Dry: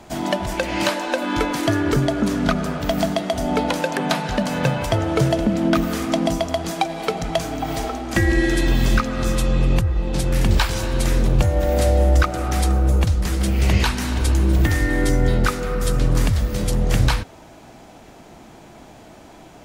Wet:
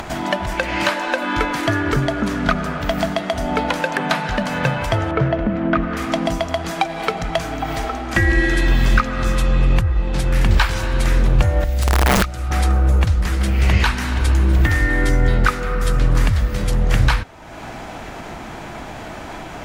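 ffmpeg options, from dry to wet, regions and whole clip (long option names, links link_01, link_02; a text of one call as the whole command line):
ffmpeg -i in.wav -filter_complex "[0:a]asettb=1/sr,asplit=3[link_01][link_02][link_03];[link_01]atrim=end=5.114[link_04];[link_02]atrim=start=5.11:end=5.97,asetpts=PTS-STARTPTS,afade=type=in:duration=0.004:curve=qsin,afade=type=out:start_time=0.856:duration=0.004:curve=qsin,lowpass=2100,bandreject=frequency=850:width=12[link_05];[link_03]atrim=start=5.966[link_06];[link_04][link_05]acrossfade=duration=0.004:curve1=hsin:curve2=qsin[link_07];[link_07][link_06]acrossfade=duration=0.004:curve1=qsin:curve2=hsin,asettb=1/sr,asplit=3[link_08][link_09][link_10];[link_08]atrim=end=11.644[link_11];[link_09]atrim=start=11.64:end=12.51,asetpts=PTS-STARTPTS,afade=type=in:duration=0.004:curve=qsin,afade=type=out:start_time=0.866:duration=0.004:curve=qsin,acrossover=split=160|3000[link_12][link_13][link_14];[link_13]acompressor=threshold=-55dB:ratio=1.5:attack=3.2:release=140:knee=2.83:detection=peak[link_15];[link_12][link_15][link_14]amix=inputs=3:normalize=0,aeval=exprs='(mod(3.76*val(0)+1,2)-1)/3.76':channel_layout=same[link_16];[link_10]atrim=start=12.506[link_17];[link_11][link_16]acrossfade=duration=0.004:curve1=hsin:curve2=qsin[link_18];[link_18][link_17]acrossfade=duration=0.004:curve1=qsin:curve2=hsin,lowshelf=frequency=140:gain=8.5,acompressor=mode=upward:threshold=-19dB:ratio=2.5,equalizer=frequency=1600:width=0.55:gain=10,volume=-4.5dB" out.wav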